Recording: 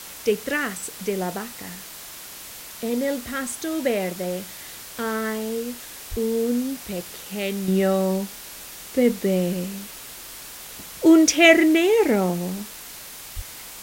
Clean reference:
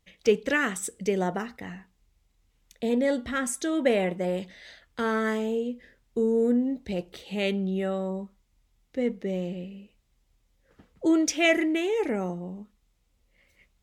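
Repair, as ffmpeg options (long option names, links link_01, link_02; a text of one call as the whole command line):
ffmpeg -i in.wav -filter_complex "[0:a]asplit=3[link_01][link_02][link_03];[link_01]afade=type=out:start_time=6.1:duration=0.02[link_04];[link_02]highpass=frequency=140:width=0.5412,highpass=frequency=140:width=1.3066,afade=type=in:start_time=6.1:duration=0.02,afade=type=out:start_time=6.22:duration=0.02[link_05];[link_03]afade=type=in:start_time=6.22:duration=0.02[link_06];[link_04][link_05][link_06]amix=inputs=3:normalize=0,asplit=3[link_07][link_08][link_09];[link_07]afade=type=out:start_time=13.35:duration=0.02[link_10];[link_08]highpass=frequency=140:width=0.5412,highpass=frequency=140:width=1.3066,afade=type=in:start_time=13.35:duration=0.02,afade=type=out:start_time=13.47:duration=0.02[link_11];[link_09]afade=type=in:start_time=13.47:duration=0.02[link_12];[link_10][link_11][link_12]amix=inputs=3:normalize=0,afwtdn=0.013,asetnsamples=nb_out_samples=441:pad=0,asendcmd='7.68 volume volume -8.5dB',volume=0dB" out.wav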